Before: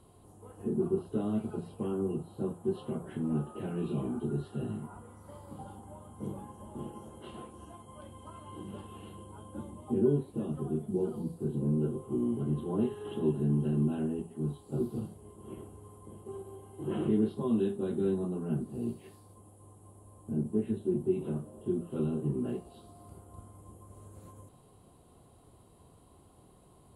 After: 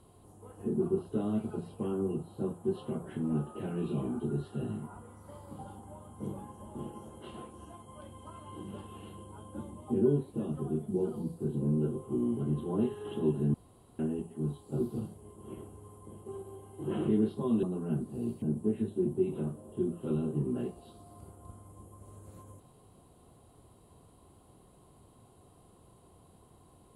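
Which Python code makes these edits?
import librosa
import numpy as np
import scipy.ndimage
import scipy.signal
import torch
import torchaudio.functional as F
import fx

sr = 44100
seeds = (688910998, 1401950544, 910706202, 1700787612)

y = fx.edit(x, sr, fx.room_tone_fill(start_s=13.54, length_s=0.45),
    fx.cut(start_s=17.63, length_s=0.6),
    fx.cut(start_s=19.02, length_s=1.29), tone=tone)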